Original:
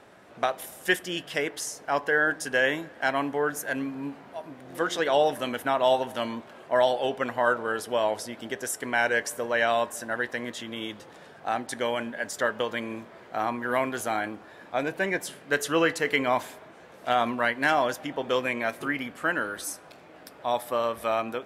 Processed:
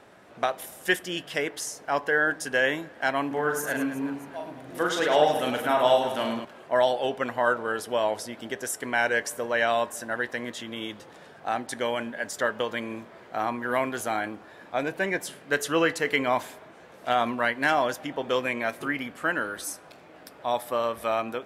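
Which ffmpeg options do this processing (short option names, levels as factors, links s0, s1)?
-filter_complex "[0:a]asettb=1/sr,asplit=3[s0][s1][s2];[s0]atrim=end=3.274[s3];[s1]atrim=start=3.27:end=6.45,asetpts=PTS-STARTPTS,afade=t=in:d=0.004:c=qsin,afade=t=out:st=3.176:d=0.004:c=qsin,aecho=1:1:40|104|206.4|370.2|632.4:0.631|0.398|0.251|0.158|0.1,atrim=end_sample=140238[s4];[s2]atrim=start=6.446[s5];[s3][s4]acrossfade=d=0.004:c1=hsin:c2=qsin[s6];[s6][s5]acrossfade=d=0.004:c1=qsin:c2=hsin"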